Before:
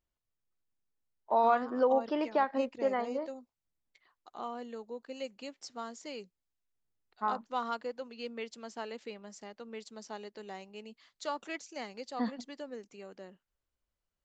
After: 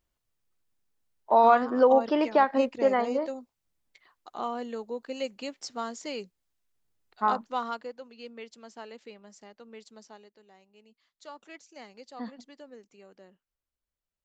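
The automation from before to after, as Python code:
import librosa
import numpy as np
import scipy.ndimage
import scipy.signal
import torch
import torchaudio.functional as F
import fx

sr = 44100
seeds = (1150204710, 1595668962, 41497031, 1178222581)

y = fx.gain(x, sr, db=fx.line((7.31, 7.0), (8.03, -3.0), (9.97, -3.0), (10.46, -14.0), (11.88, -5.0)))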